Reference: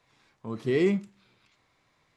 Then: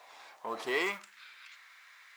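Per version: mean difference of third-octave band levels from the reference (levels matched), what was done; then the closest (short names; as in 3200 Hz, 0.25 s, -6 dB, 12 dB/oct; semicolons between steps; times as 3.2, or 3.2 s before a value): 13.0 dB: G.711 law mismatch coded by mu; high-pass sweep 700 Hz -> 1600 Hz, 0.6–1.15; gain +2 dB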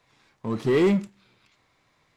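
3.0 dB: sample leveller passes 1; in parallel at -3 dB: hard clip -29.5 dBFS, distortion -6 dB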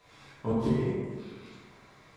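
9.0 dB: flipped gate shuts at -23 dBFS, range -24 dB; plate-style reverb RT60 1.7 s, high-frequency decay 0.45×, pre-delay 0 ms, DRR -8 dB; gain +4 dB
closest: second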